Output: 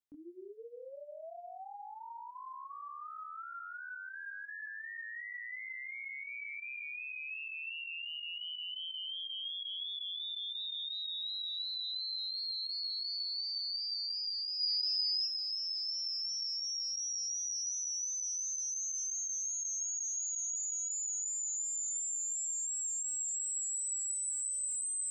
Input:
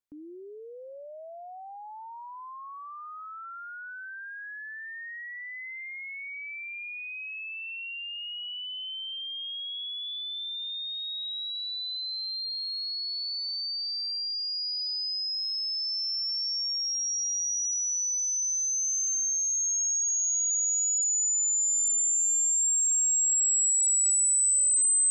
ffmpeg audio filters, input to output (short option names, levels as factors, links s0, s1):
-filter_complex "[0:a]asplit=3[s0][s1][s2];[s0]afade=t=out:st=14.59:d=0.02[s3];[s1]highshelf=f=2100:g=11,afade=t=in:st=14.59:d=0.02,afade=t=out:st=15.25:d=0.02[s4];[s2]afade=t=in:st=15.25:d=0.02[s5];[s3][s4][s5]amix=inputs=3:normalize=0,flanger=delay=18:depth=7:speed=2.8,acrossover=split=3600[s6][s7];[s7]acompressor=threshold=0.02:ratio=4:attack=1:release=60[s8];[s6][s8]amix=inputs=2:normalize=0,volume=0.841"